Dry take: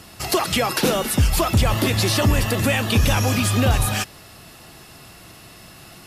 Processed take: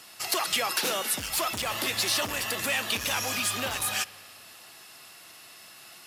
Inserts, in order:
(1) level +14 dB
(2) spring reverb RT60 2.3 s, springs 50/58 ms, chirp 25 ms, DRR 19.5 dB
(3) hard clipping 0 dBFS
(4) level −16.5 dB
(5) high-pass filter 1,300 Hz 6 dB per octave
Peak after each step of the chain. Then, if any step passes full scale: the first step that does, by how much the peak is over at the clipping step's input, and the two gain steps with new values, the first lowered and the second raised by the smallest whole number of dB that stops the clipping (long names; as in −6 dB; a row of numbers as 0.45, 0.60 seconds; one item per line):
+6.5, +6.5, 0.0, −16.5, −14.5 dBFS
step 1, 6.5 dB
step 1 +7 dB, step 4 −9.5 dB